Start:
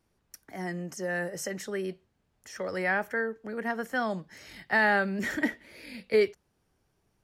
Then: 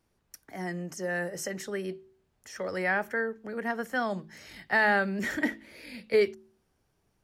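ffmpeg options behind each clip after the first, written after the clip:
ffmpeg -i in.wav -af "bandreject=frequency=54.36:width_type=h:width=4,bandreject=frequency=108.72:width_type=h:width=4,bandreject=frequency=163.08:width_type=h:width=4,bandreject=frequency=217.44:width_type=h:width=4,bandreject=frequency=271.8:width_type=h:width=4,bandreject=frequency=326.16:width_type=h:width=4,bandreject=frequency=380.52:width_type=h:width=4" out.wav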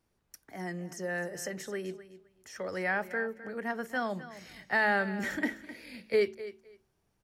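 ffmpeg -i in.wav -af "aecho=1:1:258|516:0.178|0.0302,volume=-3dB" out.wav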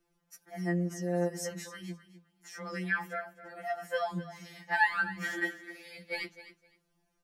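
ffmpeg -i in.wav -af "afftfilt=real='re*2.83*eq(mod(b,8),0)':imag='im*2.83*eq(mod(b,8),0)':win_size=2048:overlap=0.75,volume=2.5dB" out.wav

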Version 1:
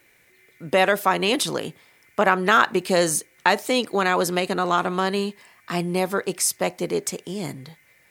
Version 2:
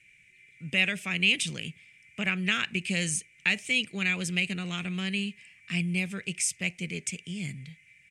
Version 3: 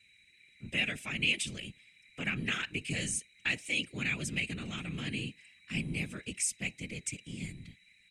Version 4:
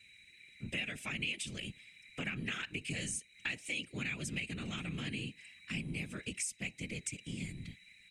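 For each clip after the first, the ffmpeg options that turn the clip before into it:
ffmpeg -i in.wav -af "firequalizer=gain_entry='entry(180,0);entry(290,-15);entry(950,-27);entry(2400,8);entry(4100,-10);entry(5900,-5);entry(8400,-2);entry(14000,-29)':delay=0.05:min_phase=1,volume=-1.5dB" out.wav
ffmpeg -i in.wav -af "equalizer=frequency=9600:width_type=o:width=0.77:gain=3,aeval=exprs='val(0)+0.001*sin(2*PI*3900*n/s)':channel_layout=same,afftfilt=real='hypot(re,im)*cos(2*PI*random(0))':imag='hypot(re,im)*sin(2*PI*random(1))':win_size=512:overlap=0.75" out.wav
ffmpeg -i in.wav -af "acompressor=threshold=-42dB:ratio=3,volume=3.5dB" out.wav

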